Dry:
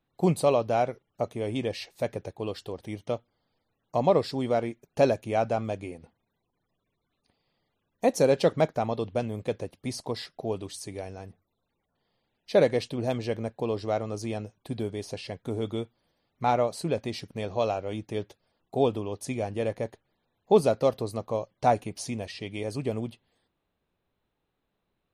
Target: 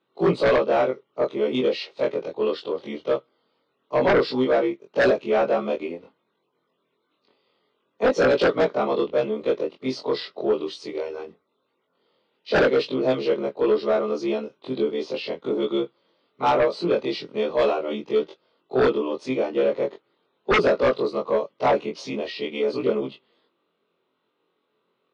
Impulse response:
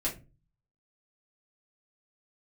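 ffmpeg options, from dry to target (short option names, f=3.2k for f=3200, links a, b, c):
-filter_complex "[0:a]afftfilt=real='re':imag='-im':win_size=2048:overlap=0.75,highpass=f=120:w=0.5412,highpass=f=120:w=1.3066,equalizer=f=410:t=q:w=4:g=4,equalizer=f=750:t=q:w=4:g=-9,equalizer=f=1.2k:t=q:w=4:g=3,equalizer=f=2.3k:t=q:w=4:g=-4,lowpass=f=4.1k:w=0.5412,lowpass=f=4.1k:w=1.3066,bandreject=f=1.7k:w=5.9,acrossover=split=260[a][b];[b]aeval=exprs='0.266*sin(PI/2*4.47*val(0)/0.266)':c=same[c];[a][c]amix=inputs=2:normalize=0,volume=-2.5dB"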